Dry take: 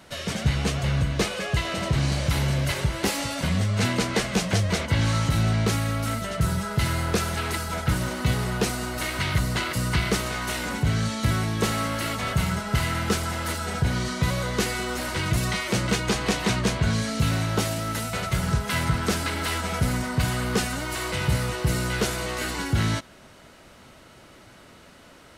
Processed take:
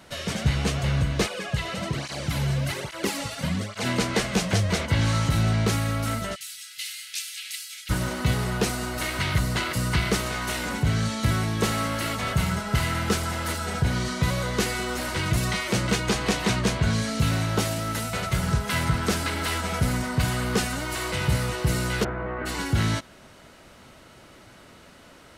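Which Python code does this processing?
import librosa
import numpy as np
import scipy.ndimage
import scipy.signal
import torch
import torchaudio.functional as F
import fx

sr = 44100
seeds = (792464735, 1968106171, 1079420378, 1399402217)

y = fx.flanger_cancel(x, sr, hz=1.2, depth_ms=3.8, at=(1.26, 3.85), fade=0.02)
y = fx.cheby2_highpass(y, sr, hz=950.0, order=4, stop_db=50, at=(6.34, 7.89), fade=0.02)
y = fx.lowpass(y, sr, hz=1700.0, slope=24, at=(22.03, 22.45), fade=0.02)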